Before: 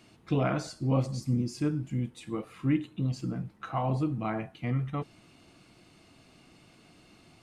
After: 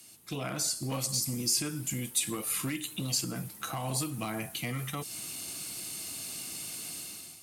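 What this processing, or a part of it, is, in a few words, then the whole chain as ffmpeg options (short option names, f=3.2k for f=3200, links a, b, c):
FM broadcast chain: -filter_complex "[0:a]highpass=66,dynaudnorm=f=580:g=3:m=14dB,acrossover=split=390|910|4200[a][b][c][d];[a]acompressor=threshold=-27dB:ratio=4[e];[b]acompressor=threshold=-33dB:ratio=4[f];[c]acompressor=threshold=-33dB:ratio=4[g];[d]acompressor=threshold=-44dB:ratio=4[h];[e][f][g][h]amix=inputs=4:normalize=0,aemphasis=mode=production:type=75fm,alimiter=limit=-18dB:level=0:latency=1:release=199,asoftclip=type=hard:threshold=-21dB,lowpass=f=15k:w=0.5412,lowpass=f=15k:w=1.3066,aemphasis=mode=production:type=75fm,volume=-6.5dB"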